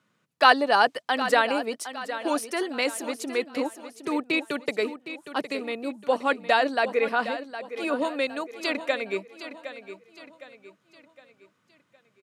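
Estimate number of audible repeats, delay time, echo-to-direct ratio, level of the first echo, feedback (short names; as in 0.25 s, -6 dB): 4, 0.762 s, -11.0 dB, -12.0 dB, 42%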